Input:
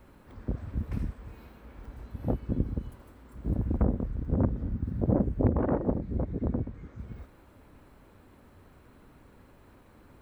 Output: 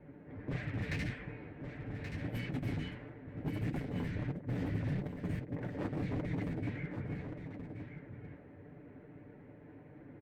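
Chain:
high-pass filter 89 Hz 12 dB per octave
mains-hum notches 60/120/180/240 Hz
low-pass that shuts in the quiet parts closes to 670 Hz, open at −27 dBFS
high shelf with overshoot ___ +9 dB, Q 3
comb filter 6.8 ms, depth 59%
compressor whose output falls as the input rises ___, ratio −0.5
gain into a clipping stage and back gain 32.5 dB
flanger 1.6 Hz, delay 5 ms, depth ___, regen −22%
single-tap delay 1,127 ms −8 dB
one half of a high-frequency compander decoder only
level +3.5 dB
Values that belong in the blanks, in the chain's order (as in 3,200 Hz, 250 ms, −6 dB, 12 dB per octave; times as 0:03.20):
1,500 Hz, −34 dBFS, 8.1 ms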